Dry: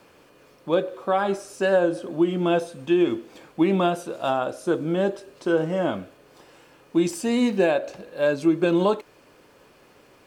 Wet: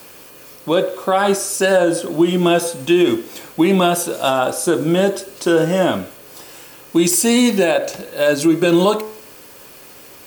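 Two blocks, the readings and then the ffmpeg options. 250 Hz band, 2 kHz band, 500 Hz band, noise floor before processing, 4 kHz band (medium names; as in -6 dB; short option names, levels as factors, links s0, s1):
+7.0 dB, +8.5 dB, +6.5 dB, -55 dBFS, +13.0 dB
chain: -af "aemphasis=mode=production:type=75fm,bandreject=f=71.98:t=h:w=4,bandreject=f=143.96:t=h:w=4,bandreject=f=215.94:t=h:w=4,bandreject=f=287.92:t=h:w=4,bandreject=f=359.9:t=h:w=4,bandreject=f=431.88:t=h:w=4,bandreject=f=503.86:t=h:w=4,bandreject=f=575.84:t=h:w=4,bandreject=f=647.82:t=h:w=4,bandreject=f=719.8:t=h:w=4,bandreject=f=791.78:t=h:w=4,bandreject=f=863.76:t=h:w=4,bandreject=f=935.74:t=h:w=4,bandreject=f=1007.72:t=h:w=4,bandreject=f=1079.7:t=h:w=4,bandreject=f=1151.68:t=h:w=4,bandreject=f=1223.66:t=h:w=4,bandreject=f=1295.64:t=h:w=4,bandreject=f=1367.62:t=h:w=4,bandreject=f=1439.6:t=h:w=4,bandreject=f=1511.58:t=h:w=4,bandreject=f=1583.56:t=h:w=4,bandreject=f=1655.54:t=h:w=4,bandreject=f=1727.52:t=h:w=4,bandreject=f=1799.5:t=h:w=4,bandreject=f=1871.48:t=h:w=4,bandreject=f=1943.46:t=h:w=4,bandreject=f=2015.44:t=h:w=4,bandreject=f=2087.42:t=h:w=4,bandreject=f=2159.4:t=h:w=4,bandreject=f=2231.38:t=h:w=4,alimiter=level_in=5.01:limit=0.891:release=50:level=0:latency=1,volume=0.596"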